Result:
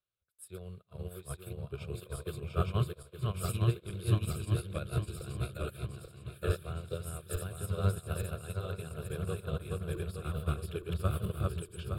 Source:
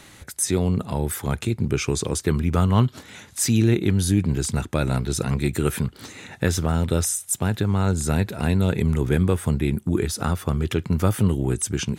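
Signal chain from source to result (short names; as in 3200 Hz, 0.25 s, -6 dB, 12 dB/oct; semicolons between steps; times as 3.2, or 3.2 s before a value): regenerating reverse delay 0.433 s, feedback 74%, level -1 dB; fixed phaser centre 1300 Hz, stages 8; upward expander 2.5:1, over -40 dBFS; gain -6.5 dB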